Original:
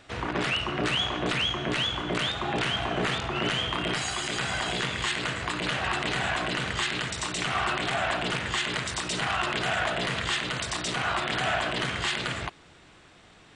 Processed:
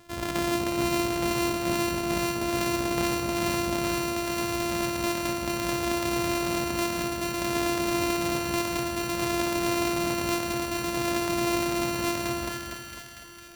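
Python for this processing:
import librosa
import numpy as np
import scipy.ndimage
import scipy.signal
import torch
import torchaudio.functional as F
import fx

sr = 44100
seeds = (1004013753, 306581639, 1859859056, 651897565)

y = np.r_[np.sort(x[:len(x) // 128 * 128].reshape(-1, 128), axis=1).ravel(), x[len(x) // 128 * 128:]]
y = fx.echo_split(y, sr, split_hz=1400.0, low_ms=249, high_ms=455, feedback_pct=52, wet_db=-5.5)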